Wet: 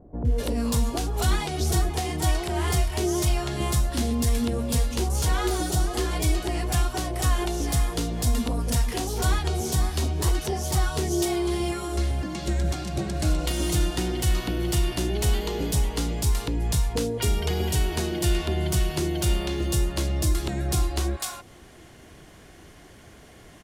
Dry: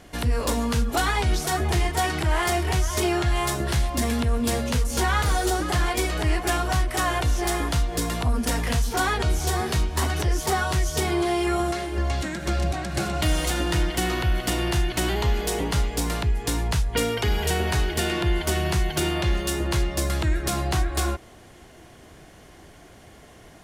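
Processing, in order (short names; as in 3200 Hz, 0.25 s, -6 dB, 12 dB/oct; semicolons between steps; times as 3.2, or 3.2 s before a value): bands offset in time lows, highs 0.25 s, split 730 Hz; dynamic EQ 1700 Hz, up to -8 dB, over -43 dBFS, Q 0.89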